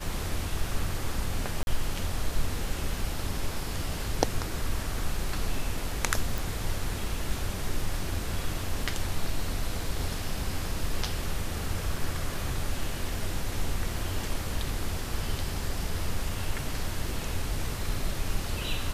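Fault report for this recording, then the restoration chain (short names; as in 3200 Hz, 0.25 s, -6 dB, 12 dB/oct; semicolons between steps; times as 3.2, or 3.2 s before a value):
1.63–1.67 gap 40 ms
6.38 pop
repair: de-click; interpolate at 1.63, 40 ms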